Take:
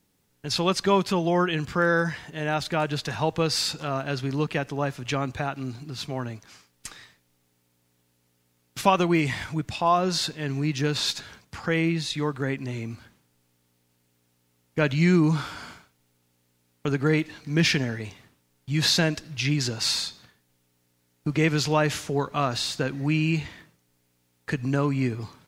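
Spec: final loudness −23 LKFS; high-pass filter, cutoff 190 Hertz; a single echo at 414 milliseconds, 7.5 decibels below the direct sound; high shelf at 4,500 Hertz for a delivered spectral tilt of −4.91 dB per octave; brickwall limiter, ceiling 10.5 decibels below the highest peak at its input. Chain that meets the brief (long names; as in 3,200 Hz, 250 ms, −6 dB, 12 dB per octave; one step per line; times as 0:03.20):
high-pass filter 190 Hz
high-shelf EQ 4,500 Hz −8 dB
brickwall limiter −17 dBFS
single-tap delay 414 ms −7.5 dB
level +6 dB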